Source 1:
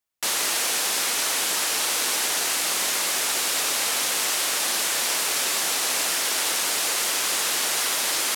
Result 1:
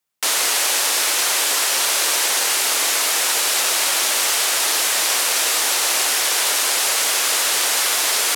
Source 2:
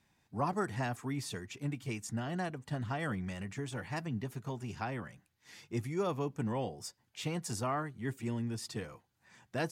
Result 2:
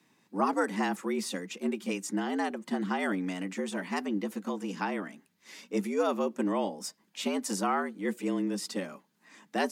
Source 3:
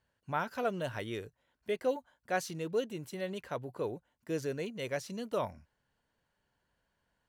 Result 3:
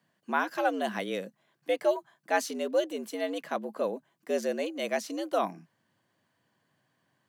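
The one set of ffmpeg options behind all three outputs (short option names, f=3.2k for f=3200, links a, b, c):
-af "afreqshift=90,volume=5.5dB"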